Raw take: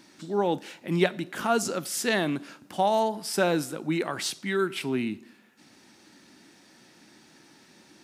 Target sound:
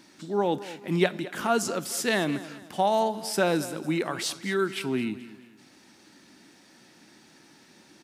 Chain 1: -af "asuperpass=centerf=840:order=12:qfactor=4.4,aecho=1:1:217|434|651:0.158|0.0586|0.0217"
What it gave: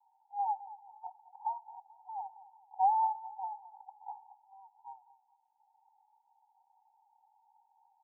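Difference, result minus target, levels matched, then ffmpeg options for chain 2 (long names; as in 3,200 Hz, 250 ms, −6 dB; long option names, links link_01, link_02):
1,000 Hz band +5.5 dB
-af "aecho=1:1:217|434|651:0.158|0.0586|0.0217"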